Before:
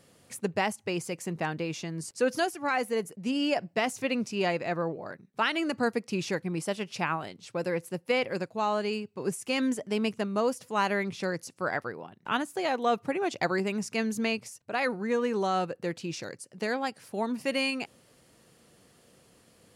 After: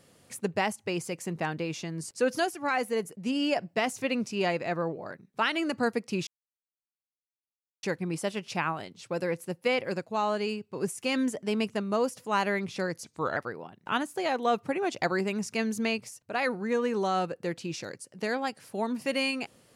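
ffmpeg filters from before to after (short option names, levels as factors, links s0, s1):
-filter_complex "[0:a]asplit=4[s0][s1][s2][s3];[s0]atrim=end=6.27,asetpts=PTS-STARTPTS,afade=t=out:st=6.266:d=0.004:c=hsin,apad=pad_dur=1.56[s4];[s1]atrim=start=6.27:end=11.484,asetpts=PTS-STARTPTS,afade=t=in:d=0.004:c=hsin[s5];[s2]atrim=start=11.48:end=11.76,asetpts=PTS-STARTPTS,asetrate=37926,aresample=44100,atrim=end_sample=14358,asetpts=PTS-STARTPTS[s6];[s3]atrim=start=11.756[s7];[s4][s5]concat=n=2:v=0:a=1[s8];[s8][s6]acrossfade=d=0.004:c1=hsin:c2=hsin[s9];[s9][s7]acrossfade=d=0.004:c1=hsin:c2=hsin"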